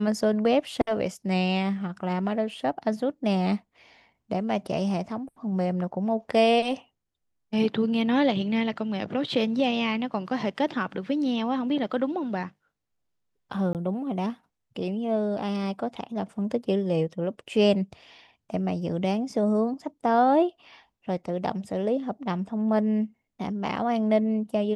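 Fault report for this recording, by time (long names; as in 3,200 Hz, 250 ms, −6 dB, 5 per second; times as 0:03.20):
0:13.73–0:13.75: drop-out 18 ms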